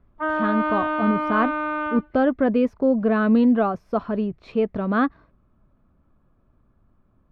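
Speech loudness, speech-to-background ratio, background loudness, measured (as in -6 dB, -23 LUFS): -22.5 LUFS, 2.5 dB, -25.0 LUFS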